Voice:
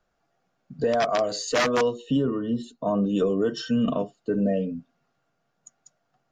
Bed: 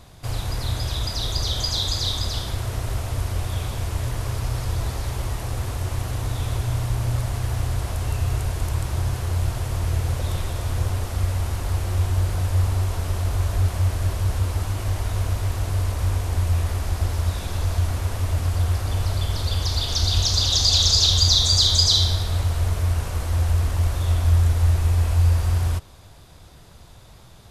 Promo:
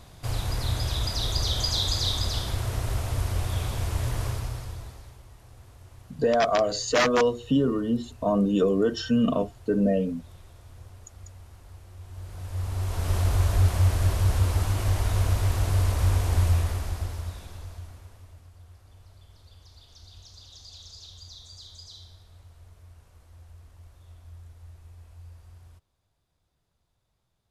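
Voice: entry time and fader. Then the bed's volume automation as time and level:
5.40 s, +1.0 dB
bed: 4.25 s -2 dB
5.23 s -23 dB
11.99 s -23 dB
13.14 s 0 dB
16.45 s 0 dB
18.52 s -29 dB

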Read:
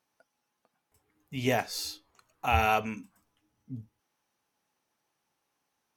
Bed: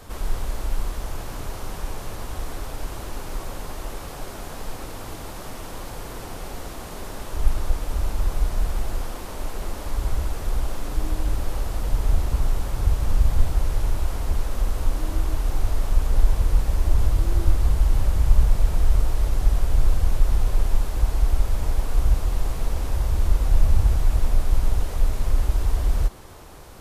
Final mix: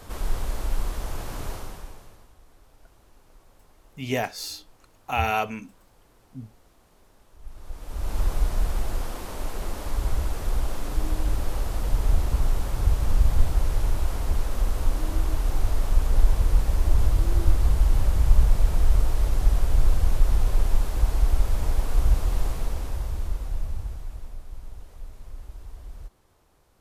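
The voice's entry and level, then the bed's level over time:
2.65 s, +1.0 dB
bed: 1.52 s -1 dB
2.36 s -24 dB
7.39 s -24 dB
8.17 s -1 dB
22.43 s -1 dB
24.42 s -19.5 dB

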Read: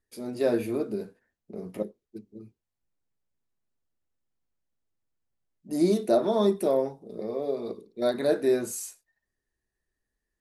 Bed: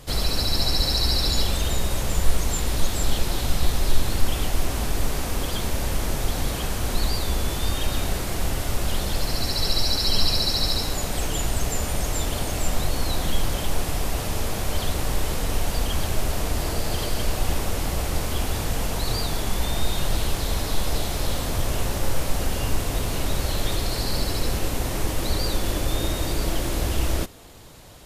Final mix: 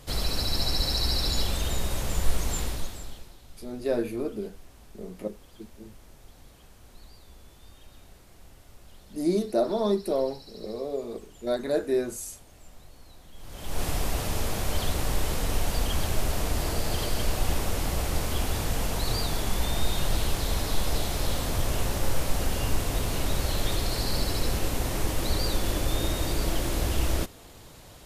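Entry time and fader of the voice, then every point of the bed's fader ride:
3.45 s, -2.0 dB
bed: 2.62 s -4.5 dB
3.38 s -26.5 dB
13.32 s -26.5 dB
13.83 s -2.5 dB

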